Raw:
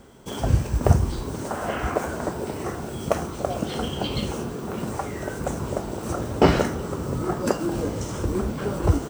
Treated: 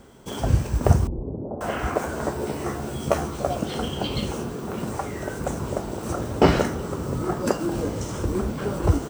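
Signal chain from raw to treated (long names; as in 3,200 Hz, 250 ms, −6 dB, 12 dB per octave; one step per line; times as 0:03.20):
0:01.07–0:01.61: inverse Chebyshev low-pass filter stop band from 2,200 Hz, stop band 60 dB
0:02.15–0:03.55: double-tracking delay 14 ms −4.5 dB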